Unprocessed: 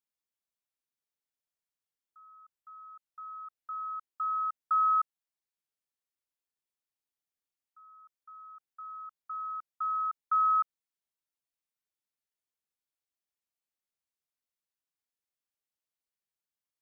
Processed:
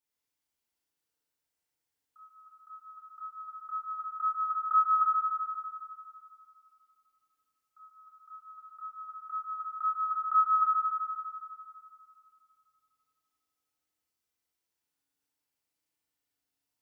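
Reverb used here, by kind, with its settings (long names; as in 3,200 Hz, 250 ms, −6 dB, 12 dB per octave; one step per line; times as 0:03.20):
feedback delay network reverb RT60 2.6 s, low-frequency decay 1.3×, high-frequency decay 0.85×, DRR −5.5 dB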